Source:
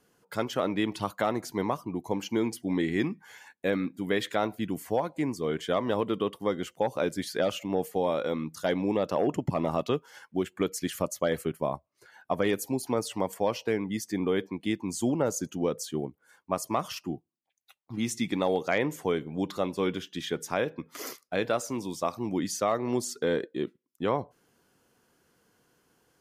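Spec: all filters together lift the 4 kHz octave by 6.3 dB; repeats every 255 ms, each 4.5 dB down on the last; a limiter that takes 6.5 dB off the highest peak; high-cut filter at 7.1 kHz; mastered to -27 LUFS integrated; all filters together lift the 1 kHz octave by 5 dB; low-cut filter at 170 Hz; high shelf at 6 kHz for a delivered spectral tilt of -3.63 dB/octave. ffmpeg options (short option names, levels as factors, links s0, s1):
-af "highpass=170,lowpass=7100,equalizer=f=1000:t=o:g=6,equalizer=f=4000:t=o:g=5.5,highshelf=f=6000:g=8,alimiter=limit=0.168:level=0:latency=1,aecho=1:1:255|510|765|1020|1275|1530|1785|2040|2295:0.596|0.357|0.214|0.129|0.0772|0.0463|0.0278|0.0167|0.01,volume=1.19"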